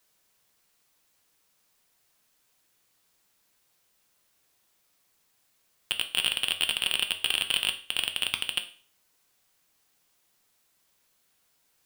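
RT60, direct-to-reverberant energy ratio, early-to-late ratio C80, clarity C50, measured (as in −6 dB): 0.40 s, 6.0 dB, 17.5 dB, 13.5 dB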